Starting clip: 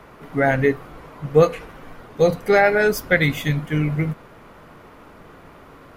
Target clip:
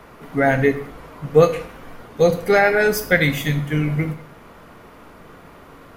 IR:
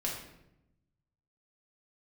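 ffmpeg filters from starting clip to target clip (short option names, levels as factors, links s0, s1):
-filter_complex "[0:a]asplit=2[s0][s1];[1:a]atrim=start_sample=2205,afade=t=out:st=0.28:d=0.01,atrim=end_sample=12789,highshelf=f=3800:g=11.5[s2];[s1][s2]afir=irnorm=-1:irlink=0,volume=0.251[s3];[s0][s3]amix=inputs=2:normalize=0,volume=0.891"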